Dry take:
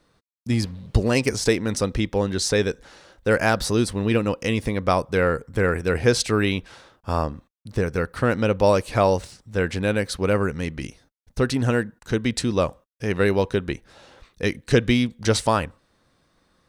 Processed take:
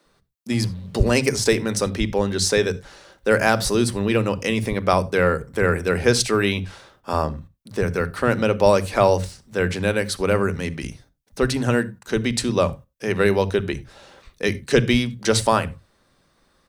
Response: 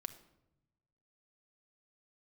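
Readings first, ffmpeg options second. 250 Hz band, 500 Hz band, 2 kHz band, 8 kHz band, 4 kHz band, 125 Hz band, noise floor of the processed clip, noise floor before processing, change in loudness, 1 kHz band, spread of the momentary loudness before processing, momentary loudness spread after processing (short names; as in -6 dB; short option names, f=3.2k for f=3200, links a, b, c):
+0.5 dB, +2.0 dB, +2.5 dB, +3.5 dB, +2.5 dB, 0.0 dB, -63 dBFS, -68 dBFS, +1.5 dB, +2.5 dB, 10 LU, 10 LU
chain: -filter_complex "[0:a]acrossover=split=190[a][b];[a]adelay=50[c];[c][b]amix=inputs=2:normalize=0,asplit=2[d][e];[1:a]atrim=start_sample=2205,atrim=end_sample=4410,highshelf=f=10k:g=8[f];[e][f]afir=irnorm=-1:irlink=0,volume=6.5dB[g];[d][g]amix=inputs=2:normalize=0,volume=-5.5dB"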